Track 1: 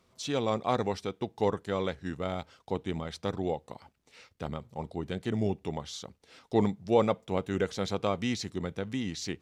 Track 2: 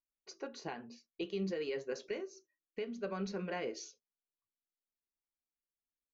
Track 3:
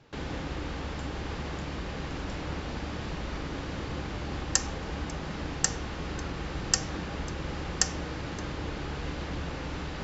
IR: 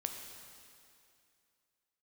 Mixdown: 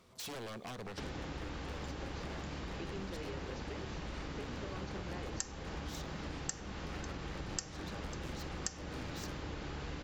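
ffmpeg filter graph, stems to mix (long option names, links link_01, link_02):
-filter_complex "[0:a]acompressor=threshold=-38dB:ratio=4,aeval=exprs='0.01*(abs(mod(val(0)/0.01+3,4)-2)-1)':channel_layout=same,volume=2dB,asplit=2[link_01][link_02];[link_02]volume=-13dB[link_03];[1:a]adelay=1600,volume=0.5dB[link_04];[2:a]highshelf=frequency=8500:gain=5.5,adelay=850,volume=1dB[link_05];[3:a]atrim=start_sample=2205[link_06];[link_03][link_06]afir=irnorm=-1:irlink=0[link_07];[link_01][link_04][link_05][link_07]amix=inputs=4:normalize=0,acompressor=threshold=-42dB:ratio=3"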